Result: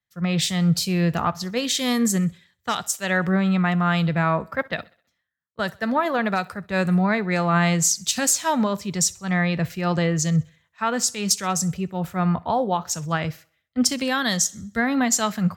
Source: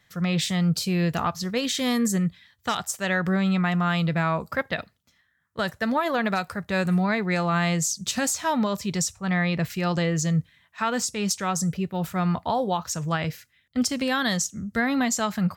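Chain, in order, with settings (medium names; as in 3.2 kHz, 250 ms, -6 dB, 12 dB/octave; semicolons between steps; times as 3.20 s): thinning echo 65 ms, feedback 55%, high-pass 170 Hz, level -22 dB; three bands expanded up and down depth 70%; trim +2.5 dB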